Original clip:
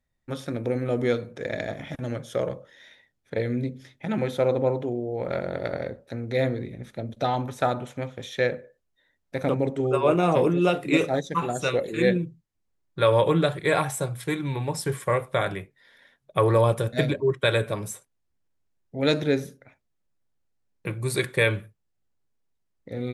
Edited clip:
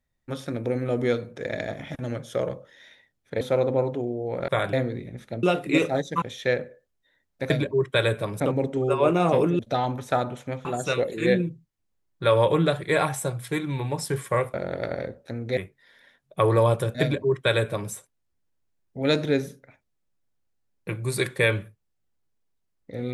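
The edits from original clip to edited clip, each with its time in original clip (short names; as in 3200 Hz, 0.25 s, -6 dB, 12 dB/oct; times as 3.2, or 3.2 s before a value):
3.41–4.29 cut
5.36–6.39 swap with 15.3–15.55
7.09–8.15 swap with 10.62–11.41
16.99–17.89 copy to 9.43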